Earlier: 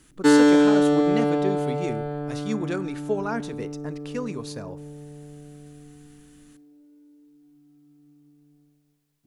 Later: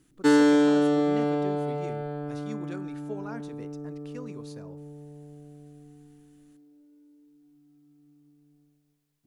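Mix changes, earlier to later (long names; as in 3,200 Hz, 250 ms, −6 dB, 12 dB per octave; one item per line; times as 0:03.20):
speech −11.5 dB
background −3.5 dB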